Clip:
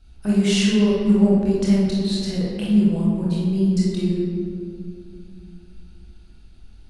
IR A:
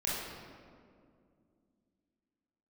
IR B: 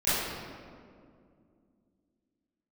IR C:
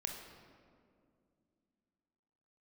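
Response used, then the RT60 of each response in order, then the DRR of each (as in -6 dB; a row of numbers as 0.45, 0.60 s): A; 2.3, 2.3, 2.3 s; -7.0, -17.0, 2.5 dB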